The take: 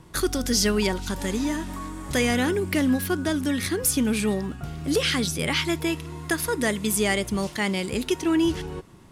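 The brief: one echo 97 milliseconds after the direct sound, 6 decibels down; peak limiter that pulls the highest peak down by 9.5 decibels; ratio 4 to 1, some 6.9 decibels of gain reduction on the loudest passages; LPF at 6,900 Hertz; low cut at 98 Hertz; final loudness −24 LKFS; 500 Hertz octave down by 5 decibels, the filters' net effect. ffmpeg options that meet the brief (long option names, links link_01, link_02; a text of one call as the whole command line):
ffmpeg -i in.wav -af "highpass=98,lowpass=6900,equalizer=frequency=500:width_type=o:gain=-7,acompressor=threshold=-29dB:ratio=4,alimiter=level_in=1.5dB:limit=-24dB:level=0:latency=1,volume=-1.5dB,aecho=1:1:97:0.501,volume=9.5dB" out.wav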